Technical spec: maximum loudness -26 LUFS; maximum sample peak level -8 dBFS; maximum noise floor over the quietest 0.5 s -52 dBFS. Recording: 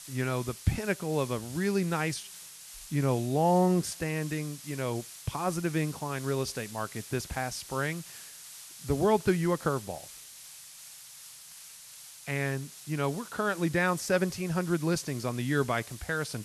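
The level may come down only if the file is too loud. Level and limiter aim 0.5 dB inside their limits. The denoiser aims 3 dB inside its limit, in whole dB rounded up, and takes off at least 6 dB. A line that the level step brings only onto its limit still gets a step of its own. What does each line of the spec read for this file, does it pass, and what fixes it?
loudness -30.5 LUFS: OK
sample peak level -12.5 dBFS: OK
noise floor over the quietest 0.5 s -49 dBFS: fail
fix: denoiser 6 dB, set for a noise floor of -49 dBFS

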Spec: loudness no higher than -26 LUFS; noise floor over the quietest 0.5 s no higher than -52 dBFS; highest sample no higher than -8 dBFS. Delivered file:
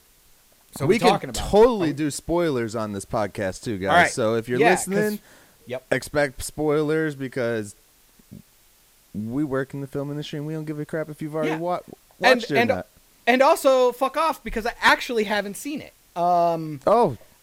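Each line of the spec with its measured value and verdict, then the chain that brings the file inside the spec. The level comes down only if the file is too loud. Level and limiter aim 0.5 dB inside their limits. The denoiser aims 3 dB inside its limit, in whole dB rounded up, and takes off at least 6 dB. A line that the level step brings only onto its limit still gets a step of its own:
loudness -22.5 LUFS: fail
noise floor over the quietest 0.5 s -57 dBFS: OK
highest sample -3.5 dBFS: fail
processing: gain -4 dB; limiter -8.5 dBFS

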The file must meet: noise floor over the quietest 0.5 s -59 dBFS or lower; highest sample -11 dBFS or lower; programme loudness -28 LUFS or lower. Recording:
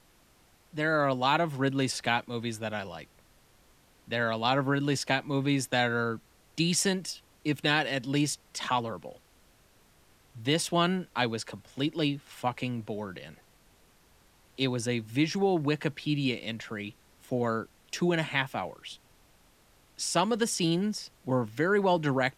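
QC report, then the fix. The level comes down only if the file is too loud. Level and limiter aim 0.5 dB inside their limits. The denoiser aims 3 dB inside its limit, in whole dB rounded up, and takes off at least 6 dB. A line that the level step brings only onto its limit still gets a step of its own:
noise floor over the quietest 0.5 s -62 dBFS: OK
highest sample -9.5 dBFS: fail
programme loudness -29.5 LUFS: OK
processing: limiter -11.5 dBFS

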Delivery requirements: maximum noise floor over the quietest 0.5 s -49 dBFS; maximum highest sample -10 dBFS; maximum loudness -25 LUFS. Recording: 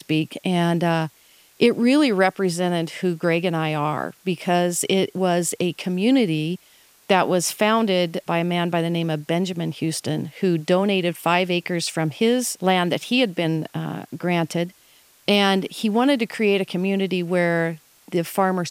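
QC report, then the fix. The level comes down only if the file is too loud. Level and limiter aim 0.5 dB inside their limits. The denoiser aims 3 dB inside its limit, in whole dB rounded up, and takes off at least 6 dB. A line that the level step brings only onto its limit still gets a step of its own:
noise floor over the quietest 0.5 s -55 dBFS: OK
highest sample -4.5 dBFS: fail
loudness -21.5 LUFS: fail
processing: gain -4 dB; limiter -10.5 dBFS

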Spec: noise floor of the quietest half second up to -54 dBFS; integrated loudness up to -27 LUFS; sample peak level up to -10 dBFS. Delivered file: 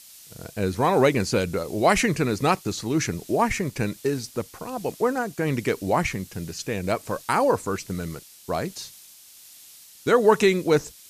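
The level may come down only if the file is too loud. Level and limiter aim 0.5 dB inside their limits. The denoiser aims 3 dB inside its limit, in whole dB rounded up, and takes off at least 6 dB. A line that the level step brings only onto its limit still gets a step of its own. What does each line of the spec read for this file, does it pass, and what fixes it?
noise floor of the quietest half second -49 dBFS: fail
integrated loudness -24.0 LUFS: fail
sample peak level -6.0 dBFS: fail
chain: denoiser 6 dB, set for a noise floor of -49 dBFS; gain -3.5 dB; limiter -10.5 dBFS

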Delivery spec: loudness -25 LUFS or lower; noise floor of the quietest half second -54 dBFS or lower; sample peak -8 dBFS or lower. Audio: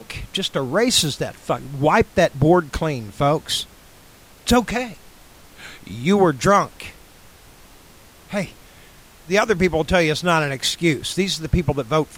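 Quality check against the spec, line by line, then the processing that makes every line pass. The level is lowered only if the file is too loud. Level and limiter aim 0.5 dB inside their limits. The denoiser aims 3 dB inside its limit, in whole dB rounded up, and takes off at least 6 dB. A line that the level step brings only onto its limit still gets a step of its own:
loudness -20.0 LUFS: fail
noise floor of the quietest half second -47 dBFS: fail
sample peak -4.5 dBFS: fail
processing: denoiser 6 dB, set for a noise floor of -47 dBFS; gain -5.5 dB

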